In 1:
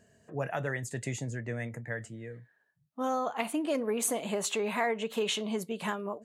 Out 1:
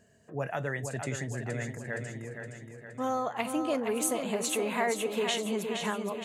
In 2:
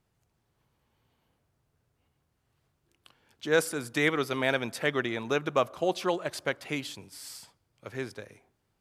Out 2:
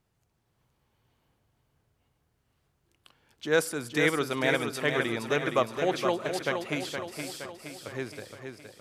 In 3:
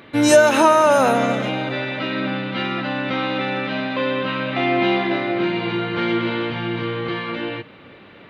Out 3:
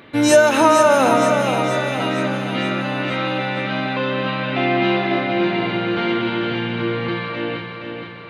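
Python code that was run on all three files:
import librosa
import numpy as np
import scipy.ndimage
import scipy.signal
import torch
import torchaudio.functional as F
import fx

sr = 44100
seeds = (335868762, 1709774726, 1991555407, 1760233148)

y = fx.echo_feedback(x, sr, ms=468, feedback_pct=54, wet_db=-6.5)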